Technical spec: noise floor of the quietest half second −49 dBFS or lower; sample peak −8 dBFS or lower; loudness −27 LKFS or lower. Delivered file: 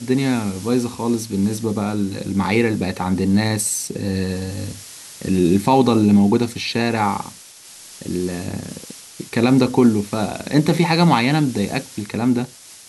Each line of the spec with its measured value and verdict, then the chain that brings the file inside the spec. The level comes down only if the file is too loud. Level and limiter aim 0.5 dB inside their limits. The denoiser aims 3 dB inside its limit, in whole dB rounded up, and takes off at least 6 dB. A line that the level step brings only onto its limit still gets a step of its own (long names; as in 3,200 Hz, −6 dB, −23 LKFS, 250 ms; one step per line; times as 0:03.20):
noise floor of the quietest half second −42 dBFS: out of spec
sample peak −3.0 dBFS: out of spec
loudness −19.0 LKFS: out of spec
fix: level −8.5 dB